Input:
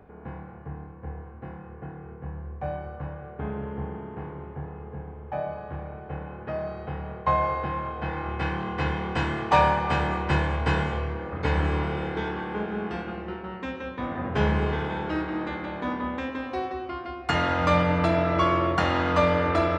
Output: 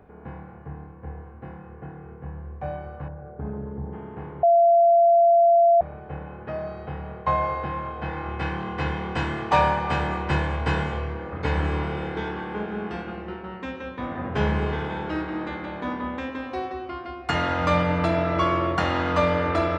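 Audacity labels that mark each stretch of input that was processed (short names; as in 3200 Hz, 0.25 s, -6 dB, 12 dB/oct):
3.080000	3.930000	formant sharpening exponent 1.5
4.430000	5.810000	bleep 683 Hz -13 dBFS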